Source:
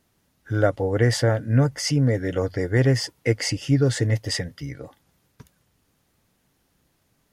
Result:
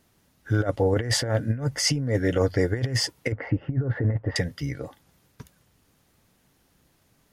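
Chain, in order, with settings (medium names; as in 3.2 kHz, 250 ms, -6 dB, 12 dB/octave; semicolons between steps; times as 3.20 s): 3.32–4.36 s: low-pass 1.6 kHz 24 dB/octave; compressor with a negative ratio -22 dBFS, ratio -0.5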